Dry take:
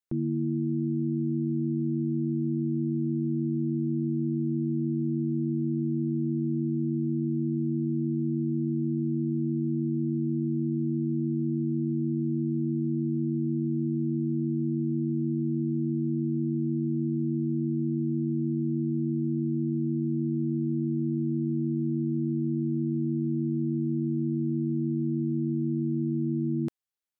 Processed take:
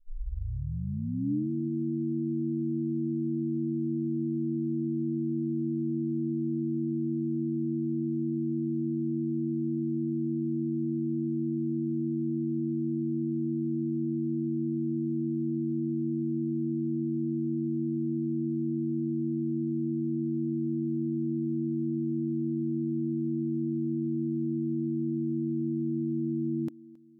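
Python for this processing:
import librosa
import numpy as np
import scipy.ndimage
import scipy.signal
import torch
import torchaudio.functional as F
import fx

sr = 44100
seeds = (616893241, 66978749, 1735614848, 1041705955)

y = fx.tape_start_head(x, sr, length_s=1.5)
y = fx.peak_eq(y, sr, hz=290.0, db=9.0, octaves=0.3)
y = fx.quant_float(y, sr, bits=8)
y = fx.echo_feedback(y, sr, ms=270, feedback_pct=52, wet_db=-23)
y = y * 10.0 ** (-5.0 / 20.0)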